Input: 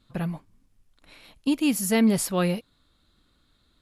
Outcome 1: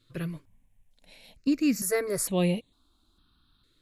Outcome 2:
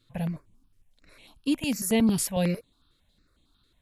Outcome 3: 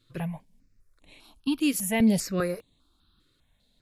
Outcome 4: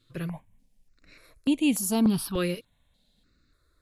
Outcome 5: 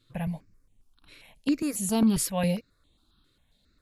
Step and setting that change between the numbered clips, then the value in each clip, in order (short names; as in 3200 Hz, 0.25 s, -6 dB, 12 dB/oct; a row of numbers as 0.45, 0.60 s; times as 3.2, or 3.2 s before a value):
step phaser, rate: 2.2, 11, 5, 3.4, 7.4 Hz